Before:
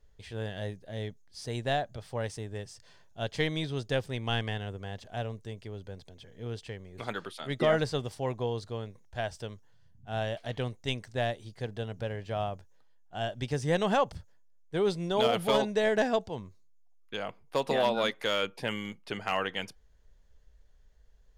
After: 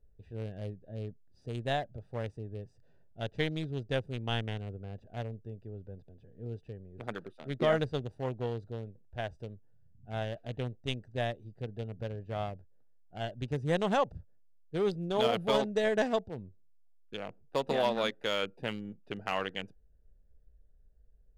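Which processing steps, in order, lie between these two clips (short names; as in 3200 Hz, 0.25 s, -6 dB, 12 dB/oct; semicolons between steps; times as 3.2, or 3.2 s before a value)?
Wiener smoothing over 41 samples; gain -1.5 dB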